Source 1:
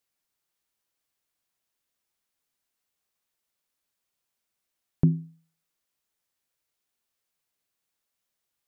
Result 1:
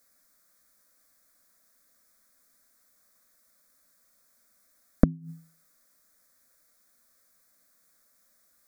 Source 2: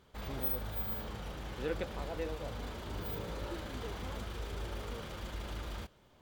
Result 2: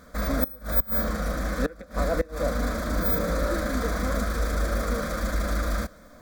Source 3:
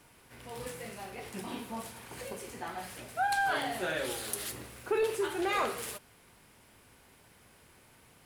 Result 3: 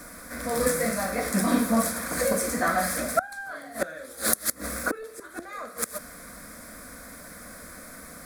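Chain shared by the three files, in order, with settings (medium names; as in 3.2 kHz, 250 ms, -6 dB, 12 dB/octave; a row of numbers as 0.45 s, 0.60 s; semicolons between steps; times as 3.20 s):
inverted gate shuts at -26 dBFS, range -24 dB; static phaser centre 580 Hz, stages 8; normalise loudness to -27 LUFS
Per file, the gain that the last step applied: +17.0 dB, +18.0 dB, +19.5 dB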